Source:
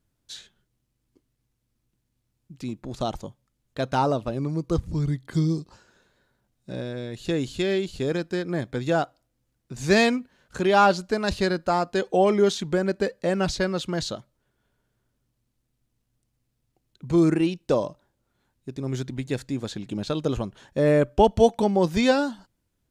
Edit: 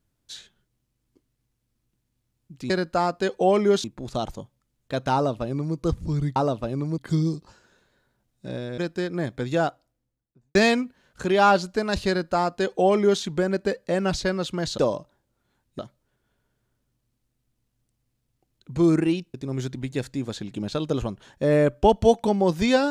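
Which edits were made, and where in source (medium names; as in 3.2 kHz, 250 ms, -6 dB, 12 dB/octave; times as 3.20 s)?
4.00–4.62 s: copy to 5.22 s
7.02–8.13 s: delete
8.98–9.90 s: studio fade out
11.43–12.57 s: copy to 2.70 s
17.68–18.69 s: move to 14.13 s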